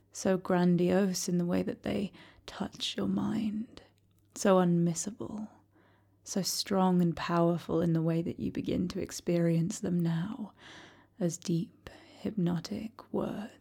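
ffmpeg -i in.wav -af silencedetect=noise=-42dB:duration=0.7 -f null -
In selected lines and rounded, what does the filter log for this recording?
silence_start: 5.46
silence_end: 6.27 | silence_duration: 0.81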